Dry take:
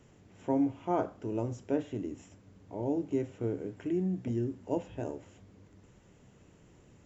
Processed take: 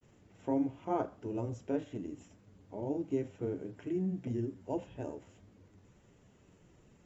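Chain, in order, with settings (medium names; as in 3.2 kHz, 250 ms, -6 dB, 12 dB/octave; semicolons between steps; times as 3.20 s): granulator 100 ms, grains 23 per s, spray 12 ms, pitch spread up and down by 0 st; trim -1.5 dB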